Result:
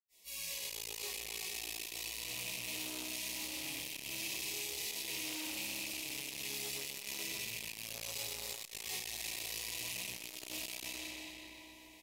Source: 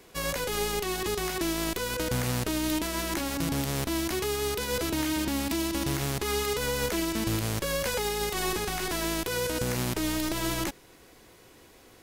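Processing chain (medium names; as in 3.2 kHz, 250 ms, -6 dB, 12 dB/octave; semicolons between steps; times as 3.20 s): rattle on loud lows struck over -33 dBFS, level -22 dBFS; reverb removal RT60 1 s; amplifier tone stack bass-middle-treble 5-5-5; peak limiter -29 dBFS, peak gain reduction 6 dB; Butterworth band-stop 1.4 kHz, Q 1.3; tilt EQ +2 dB/octave; feedback delay 125 ms, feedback 58%, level -3.5 dB; reverberation RT60 4.7 s, pre-delay 80 ms; transformer saturation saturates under 2.9 kHz; trim +8.5 dB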